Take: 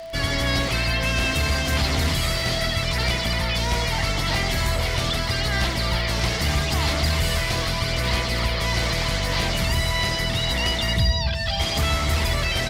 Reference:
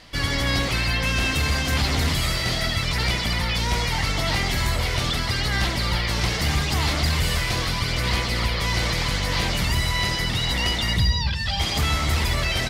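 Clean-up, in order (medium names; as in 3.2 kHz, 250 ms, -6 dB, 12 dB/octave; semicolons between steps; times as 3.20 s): de-click; band-stop 660 Hz, Q 30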